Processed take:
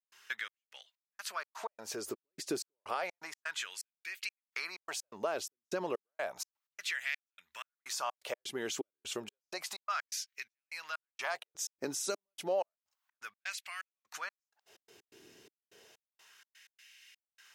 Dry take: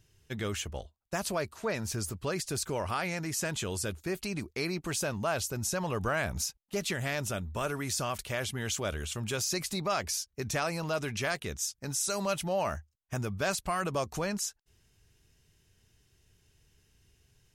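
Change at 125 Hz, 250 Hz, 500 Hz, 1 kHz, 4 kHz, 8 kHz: −25.0, −11.0, −6.5, −6.0, −5.5, −8.5 decibels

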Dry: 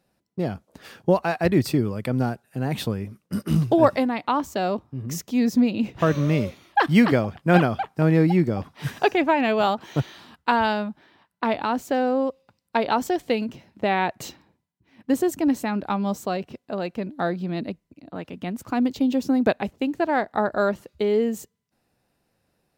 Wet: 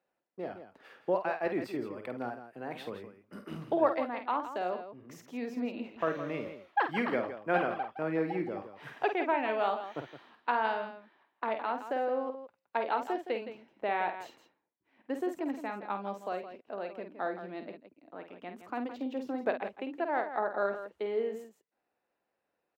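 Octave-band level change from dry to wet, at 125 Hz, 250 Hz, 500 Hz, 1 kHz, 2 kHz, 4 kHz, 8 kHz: −23.5 dB, −15.5 dB, −9.0 dB, −8.0 dB, −8.5 dB, −14.5 dB, below −20 dB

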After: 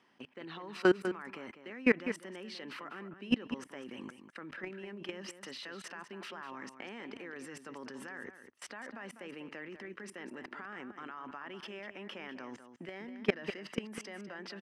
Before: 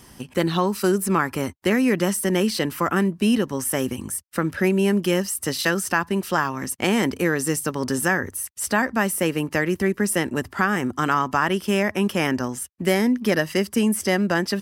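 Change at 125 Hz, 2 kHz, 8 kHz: −24.0, −16.0, −27.0 decibels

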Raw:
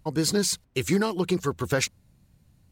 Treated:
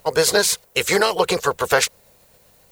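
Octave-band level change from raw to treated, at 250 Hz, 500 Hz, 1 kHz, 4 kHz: −4.0, +8.5, +12.0, +9.0 decibels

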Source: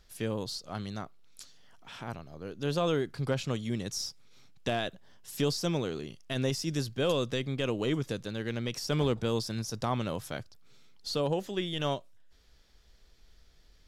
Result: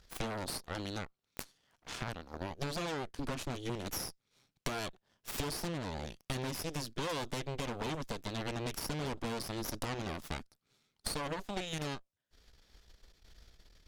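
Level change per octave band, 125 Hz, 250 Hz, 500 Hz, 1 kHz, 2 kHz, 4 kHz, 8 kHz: −7.5, −7.5, −9.0, −2.5, −2.5, −5.0, −1.5 decibels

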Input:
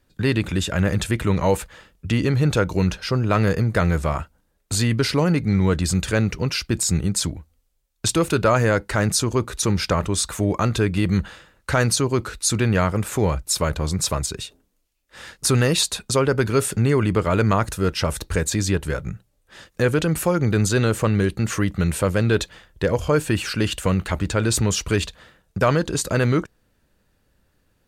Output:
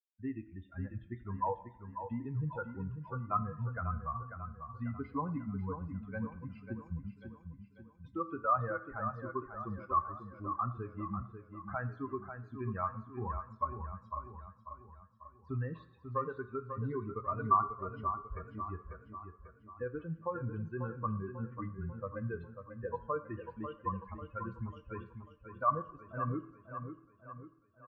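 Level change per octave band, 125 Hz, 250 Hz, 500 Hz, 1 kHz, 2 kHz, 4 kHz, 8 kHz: −19.5 dB, −19.5 dB, −20.0 dB, −7.5 dB, −21.5 dB, below −40 dB, below −40 dB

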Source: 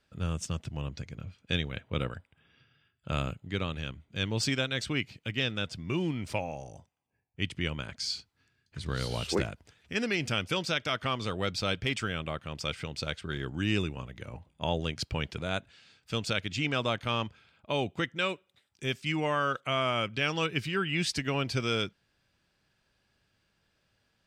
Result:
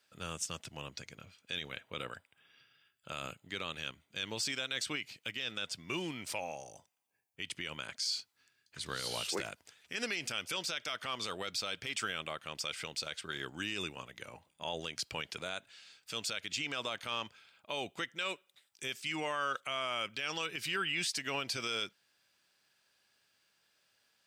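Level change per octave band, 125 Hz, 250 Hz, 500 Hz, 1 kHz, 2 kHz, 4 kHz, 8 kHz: −17.5, −12.5, −9.0, −6.0, −4.5, −3.0, +1.5 decibels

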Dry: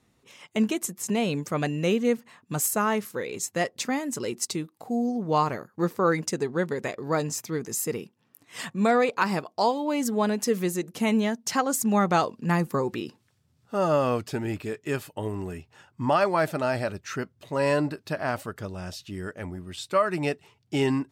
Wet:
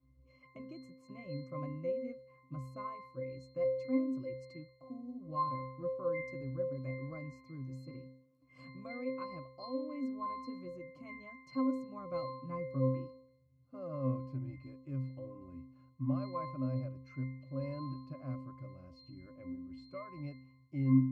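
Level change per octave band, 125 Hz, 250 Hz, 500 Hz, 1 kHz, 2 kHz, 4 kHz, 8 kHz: −6.5 dB, −10.5 dB, −13.5 dB, −16.0 dB, −20.5 dB, −22.5 dB, below −40 dB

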